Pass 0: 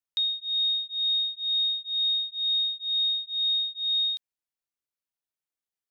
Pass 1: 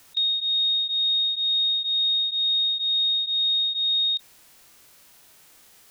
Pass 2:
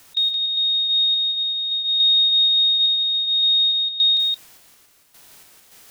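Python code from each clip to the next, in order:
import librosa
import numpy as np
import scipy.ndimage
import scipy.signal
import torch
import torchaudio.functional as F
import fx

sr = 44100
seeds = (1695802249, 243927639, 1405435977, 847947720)

y1 = fx.hpss(x, sr, part='harmonic', gain_db=9)
y1 = fx.env_flatten(y1, sr, amount_pct=70)
y1 = F.gain(torch.from_numpy(y1), -6.5).numpy()
y2 = fx.tremolo_random(y1, sr, seeds[0], hz=3.5, depth_pct=80)
y2 = y2 + 10.0 ** (-4.0 / 20.0) * np.pad(y2, (int(171 * sr / 1000.0), 0))[:len(y2)]
y2 = F.gain(torch.from_numpy(y2), 7.0).numpy()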